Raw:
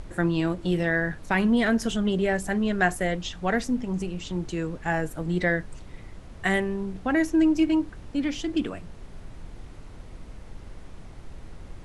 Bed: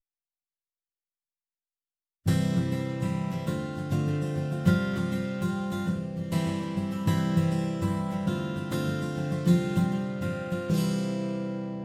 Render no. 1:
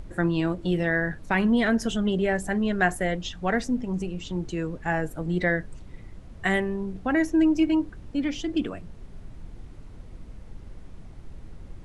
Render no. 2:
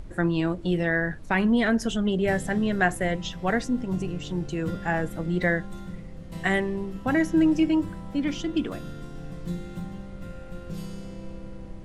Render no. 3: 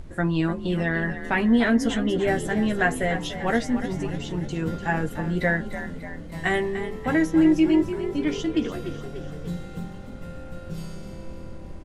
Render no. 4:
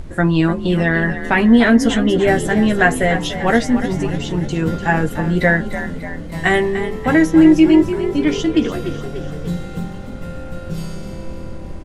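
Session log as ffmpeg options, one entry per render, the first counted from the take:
-af "afftdn=nr=6:nf=-44"
-filter_complex "[1:a]volume=0.299[s0];[0:a][s0]amix=inputs=2:normalize=0"
-filter_complex "[0:a]asplit=2[s0][s1];[s1]adelay=13,volume=0.501[s2];[s0][s2]amix=inputs=2:normalize=0,asplit=7[s3][s4][s5][s6][s7][s8][s9];[s4]adelay=295,afreqshift=41,volume=0.266[s10];[s5]adelay=590,afreqshift=82,volume=0.146[s11];[s6]adelay=885,afreqshift=123,volume=0.0804[s12];[s7]adelay=1180,afreqshift=164,volume=0.0442[s13];[s8]adelay=1475,afreqshift=205,volume=0.0243[s14];[s9]adelay=1770,afreqshift=246,volume=0.0133[s15];[s3][s10][s11][s12][s13][s14][s15]amix=inputs=7:normalize=0"
-af "volume=2.66,alimiter=limit=0.891:level=0:latency=1"

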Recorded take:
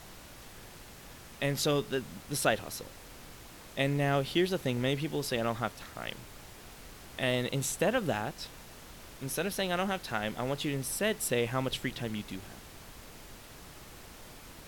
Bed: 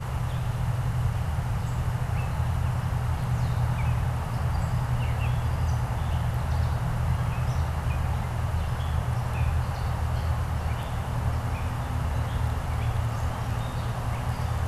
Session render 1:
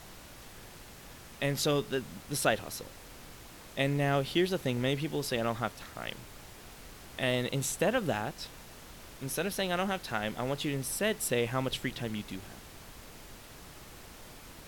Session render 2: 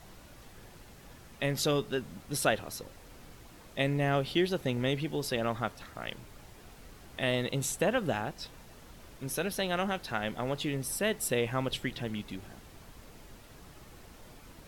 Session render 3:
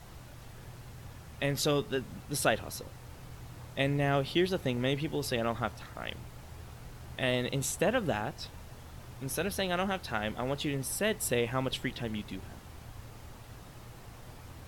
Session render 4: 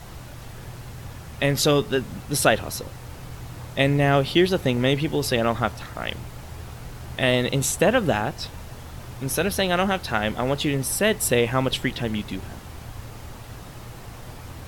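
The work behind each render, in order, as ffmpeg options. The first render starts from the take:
-af anull
-af "afftdn=nr=6:nf=-50"
-filter_complex "[1:a]volume=0.075[s0];[0:a][s0]amix=inputs=2:normalize=0"
-af "volume=2.99,alimiter=limit=0.708:level=0:latency=1"

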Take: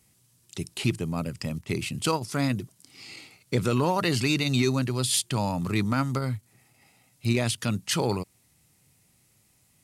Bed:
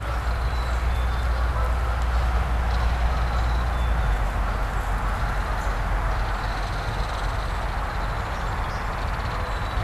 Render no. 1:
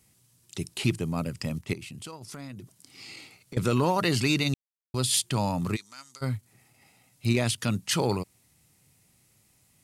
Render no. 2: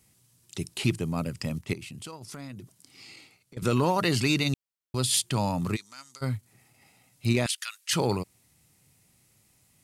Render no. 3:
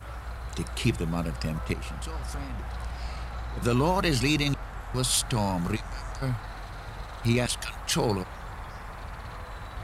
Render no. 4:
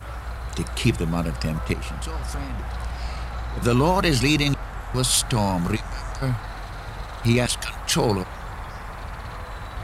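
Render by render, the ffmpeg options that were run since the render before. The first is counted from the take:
-filter_complex "[0:a]asettb=1/sr,asplit=3[s0][s1][s2];[s0]atrim=end=1.734[s3];[s1]atrim=start=1.73:end=3.57,asetpts=PTS-STARTPTS,afade=t=in:d=0.004:c=qsin,afade=t=out:st=1.836:d=0.004:c=qsin,acompressor=threshold=0.0112:ratio=5:attack=3.2:release=140:knee=1:detection=peak[s4];[s2]atrim=start=3.566[s5];[s3][s4]acrossfade=d=0.004:c1=hsin:c2=qsin[s6];[s6][s5]acrossfade=d=0.004:c1=qsin:c2=hsin,asplit=3[s7][s8][s9];[s7]afade=t=out:st=5.75:d=0.02[s10];[s8]bandpass=f=6500:t=q:w=1.7,afade=t=in:st=5.75:d=0.02,afade=t=out:st=6.21:d=0.02[s11];[s9]afade=t=in:st=6.21:d=0.02[s12];[s10][s11][s12]amix=inputs=3:normalize=0,asplit=3[s13][s14][s15];[s13]atrim=end=4.54,asetpts=PTS-STARTPTS,afade=t=out:st=4.536:d=0.004:c=hsin[s16];[s14]atrim=start=4.54:end=4.94,asetpts=PTS-STARTPTS,volume=0[s17];[s15]atrim=start=4.94,asetpts=PTS-STARTPTS,afade=t=in:d=0.004:c=hsin[s18];[s16][s17][s18]concat=n=3:v=0:a=1"
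-filter_complex "[0:a]asettb=1/sr,asplit=3[s0][s1][s2];[s0]atrim=end=7.464[s3];[s1]atrim=start=7.46:end=7.93,asetpts=PTS-STARTPTS,afade=t=in:d=0.004:c=qsin,afade=t=out:st=0.466:d=0.004:c=qsin,highpass=f=1400:w=0.5412,highpass=f=1400:w=1.3066[s4];[s2]atrim=start=7.926[s5];[s3][s4]acrossfade=d=0.004:c1=hsin:c2=qsin[s6];[s6][s5]acrossfade=d=0.004:c1=qsin:c2=hsin,asplit=2[s7][s8];[s7]atrim=end=3.62,asetpts=PTS-STARTPTS,afade=t=out:st=2.57:d=1.05:silence=0.266073[s9];[s8]atrim=start=3.62,asetpts=PTS-STARTPTS,afade=t=in:d=0.004:c=hsin:silence=0.266073[s10];[s9][s10]concat=n=2:v=0:a=1"
-filter_complex "[1:a]volume=0.237[s0];[0:a][s0]amix=inputs=2:normalize=0"
-af "volume=1.78"

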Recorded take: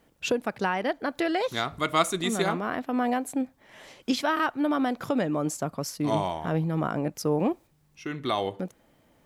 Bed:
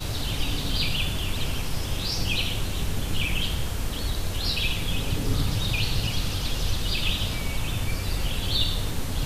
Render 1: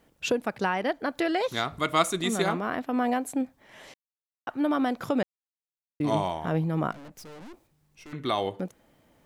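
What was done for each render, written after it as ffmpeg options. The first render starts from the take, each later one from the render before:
-filter_complex "[0:a]asettb=1/sr,asplit=3[s0][s1][s2];[s0]atrim=end=6.914[s3];[s1]atrim=start=6.91:end=8.13,asetpts=PTS-STARTPTS,afade=t=in:d=0.004:c=qsin,afade=t=out:st=1.216:d=0.004:c=qsin,aeval=exprs='(tanh(158*val(0)+0.55)-tanh(0.55))/158':c=same[s4];[s2]atrim=start=8.126[s5];[s3][s4]acrossfade=d=0.004:c1=hsin:c2=qsin[s6];[s6][s5]acrossfade=d=0.004:c1=qsin:c2=hsin,asplit=5[s7][s8][s9][s10][s11];[s7]atrim=end=3.94,asetpts=PTS-STARTPTS,afade=t=out:st=3.936:d=0.004:c=hsin[s12];[s8]atrim=start=3.94:end=4.47,asetpts=PTS-STARTPTS,volume=0[s13];[s9]atrim=start=4.47:end=5.23,asetpts=PTS-STARTPTS,afade=t=in:d=0.004:c=hsin,afade=t=out:st=0.756:d=0.004:c=hsin[s14];[s10]atrim=start=5.23:end=6,asetpts=PTS-STARTPTS,volume=0[s15];[s11]atrim=start=6,asetpts=PTS-STARTPTS,afade=t=in:d=0.004:c=hsin[s16];[s12][s13][s14][s15][s16]concat=n=5:v=0:a=1"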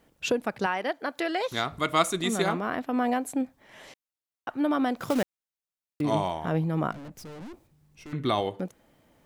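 -filter_complex "[0:a]asettb=1/sr,asplit=3[s0][s1][s2];[s0]atrim=end=0.664[s3];[s1]atrim=start=0.66:end=1.52,asetpts=PTS-STARTPTS,afade=t=in:d=0.004:c=qsin,afade=t=out:st=0.856:d=0.004:c=qsin,highpass=f=420:p=1[s4];[s2]atrim=start=1.516[s5];[s3][s4]acrossfade=d=0.004:c1=hsin:c2=qsin[s6];[s6][s5]acrossfade=d=0.004:c1=qsin:c2=hsin,asettb=1/sr,asplit=3[s7][s8][s9];[s7]atrim=end=4.964[s10];[s8]atrim=start=4.96:end=6.01,asetpts=PTS-STARTPTS,afade=t=in:d=0.004:c=qsin,afade=t=out:st=1.046:d=0.004:c=qsin,acrusher=bits=3:mode=log:mix=0:aa=0.000001[s11];[s9]atrim=start=6.006[s12];[s10][s11]acrossfade=d=0.004:c1=hsin:c2=qsin[s13];[s13][s12]acrossfade=d=0.004:c1=qsin:c2=hsin,asettb=1/sr,asplit=3[s14][s15][s16];[s14]atrim=end=6.914[s17];[s15]atrim=start=6.91:end=8.41,asetpts=PTS-STARTPTS,afade=t=in:d=0.004:c=qsin,afade=t=out:st=1.496:d=0.004:c=qsin,equalizer=f=94:w=0.35:g=7[s18];[s16]atrim=start=8.406[s19];[s17][s18]acrossfade=d=0.004:c1=hsin:c2=qsin[s20];[s20][s19]acrossfade=d=0.004:c1=qsin:c2=hsin"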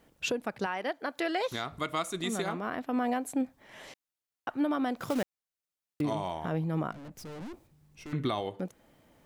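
-af "alimiter=limit=0.0891:level=0:latency=1:release=475"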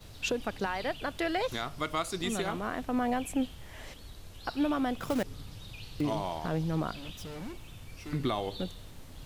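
-filter_complex "[1:a]volume=0.1[s0];[0:a][s0]amix=inputs=2:normalize=0"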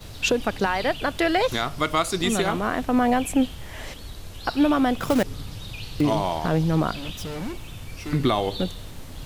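-af "volume=2.99"

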